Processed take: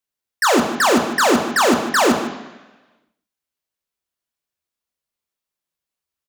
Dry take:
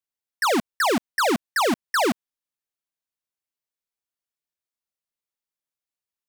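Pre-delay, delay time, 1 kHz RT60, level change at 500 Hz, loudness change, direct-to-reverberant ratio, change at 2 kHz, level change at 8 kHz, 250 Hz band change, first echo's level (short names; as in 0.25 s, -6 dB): 3 ms, 0.152 s, 1.1 s, +7.0 dB, +6.5 dB, 3.5 dB, +6.0 dB, +9.0 dB, +7.5 dB, -13.5 dB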